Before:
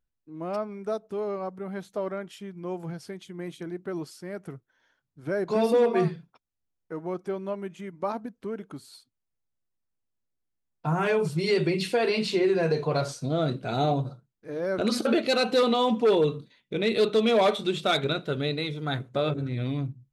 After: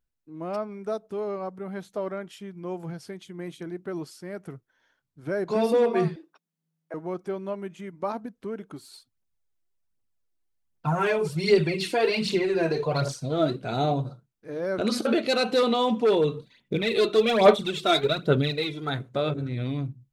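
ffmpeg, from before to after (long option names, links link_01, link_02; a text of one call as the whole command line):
ffmpeg -i in.wav -filter_complex "[0:a]asettb=1/sr,asplit=3[link_01][link_02][link_03];[link_01]atrim=end=6.164[link_04];[link_02]atrim=start=6.16:end=6.94,asetpts=PTS-STARTPTS,afade=type=in:duration=0.004:curve=qsin,afade=type=out:start_time=0.776:duration=0.004:curve=qsin,afreqshift=160[link_05];[link_03]atrim=start=6.936[link_06];[link_04][link_05]acrossfade=duration=0.004:curve1=hsin:curve2=qsin[link_07];[link_07][link_06]acrossfade=duration=0.004:curve1=qsin:curve2=hsin,asplit=3[link_08][link_09][link_10];[link_08]afade=type=out:start_time=8.75:duration=0.02[link_11];[link_09]aphaser=in_gain=1:out_gain=1:delay=3.3:decay=0.54:speed=1.3:type=triangular,afade=type=in:start_time=8.75:duration=0.02,afade=type=out:start_time=13.56:duration=0.02[link_12];[link_10]afade=type=in:start_time=13.56:duration=0.02[link_13];[link_11][link_12][link_13]amix=inputs=3:normalize=0,asplit=3[link_14][link_15][link_16];[link_14]afade=type=out:start_time=16.36:duration=0.02[link_17];[link_15]aphaser=in_gain=1:out_gain=1:delay=3:decay=0.64:speed=1.2:type=sinusoidal,afade=type=in:start_time=16.36:duration=0.02,afade=type=out:start_time=18.89:duration=0.02[link_18];[link_16]afade=type=in:start_time=18.89:duration=0.02[link_19];[link_17][link_18][link_19]amix=inputs=3:normalize=0" out.wav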